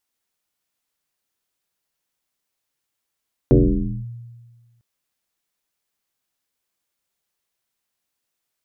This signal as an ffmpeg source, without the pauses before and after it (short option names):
-f lavfi -i "aevalsrc='0.422*pow(10,-3*t/1.54)*sin(2*PI*118*t+4.1*clip(1-t/0.56,0,1)*sin(2*PI*0.73*118*t))':d=1.3:s=44100"